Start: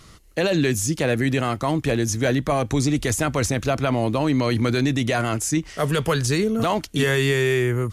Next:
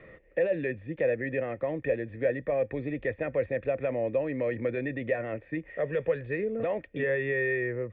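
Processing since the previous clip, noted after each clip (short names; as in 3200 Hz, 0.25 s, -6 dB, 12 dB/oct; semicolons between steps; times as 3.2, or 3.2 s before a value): vocal tract filter e; three-band squash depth 40%; gain +3 dB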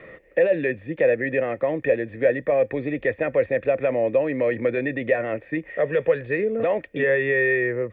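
low shelf 140 Hz -10.5 dB; gain +8.5 dB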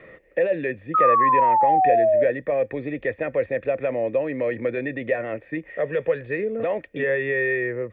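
painted sound fall, 0.94–2.24, 580–1300 Hz -15 dBFS; gain -2.5 dB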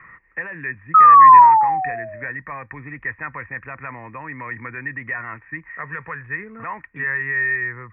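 EQ curve 140 Hz 0 dB, 390 Hz -14 dB, 570 Hz -24 dB, 990 Hz +12 dB, 2200 Hz +3 dB, 3700 Hz -26 dB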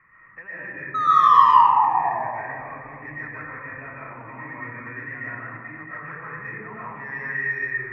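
in parallel at -3 dB: soft clip -10.5 dBFS, distortion -11 dB; on the sum: reverb RT60 2.1 s, pre-delay 85 ms, DRR -9 dB; gain -18 dB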